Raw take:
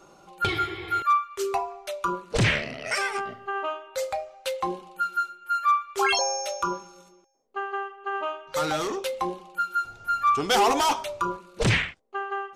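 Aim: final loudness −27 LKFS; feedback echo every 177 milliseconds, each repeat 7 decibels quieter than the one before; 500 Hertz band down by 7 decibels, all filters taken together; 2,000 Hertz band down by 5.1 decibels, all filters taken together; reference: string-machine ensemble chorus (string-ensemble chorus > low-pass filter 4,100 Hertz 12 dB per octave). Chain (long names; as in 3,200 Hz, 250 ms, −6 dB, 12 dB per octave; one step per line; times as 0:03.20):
parametric band 500 Hz −9 dB
parametric band 2,000 Hz −6 dB
repeating echo 177 ms, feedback 45%, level −7 dB
string-ensemble chorus
low-pass filter 4,100 Hz 12 dB per octave
level +5.5 dB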